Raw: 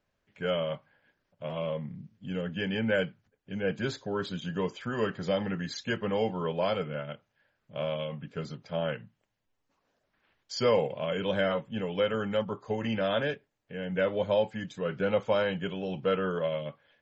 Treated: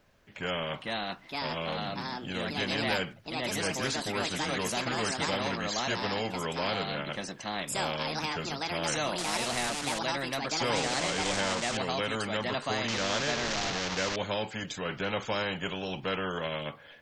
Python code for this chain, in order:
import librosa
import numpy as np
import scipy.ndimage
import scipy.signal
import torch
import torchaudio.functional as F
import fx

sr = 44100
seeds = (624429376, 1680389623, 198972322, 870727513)

y = fx.delta_mod(x, sr, bps=32000, step_db=-29.5, at=(12.88, 14.16))
y = fx.echo_pitch(y, sr, ms=533, semitones=4, count=2, db_per_echo=-3.0)
y = fx.spectral_comp(y, sr, ratio=2.0)
y = F.gain(torch.from_numpy(y), -3.5).numpy()